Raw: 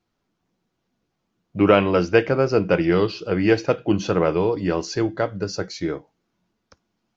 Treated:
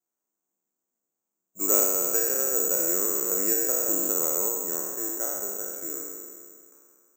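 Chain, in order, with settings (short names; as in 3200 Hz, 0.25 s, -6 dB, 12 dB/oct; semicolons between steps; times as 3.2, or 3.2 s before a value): spectral trails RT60 2.16 s; HPF 62 Hz; three-band isolator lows -20 dB, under 240 Hz, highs -19 dB, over 2000 Hz; careless resampling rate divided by 6×, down filtered, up zero stuff; 1.82–4.49 three-band squash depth 100%; gain -17.5 dB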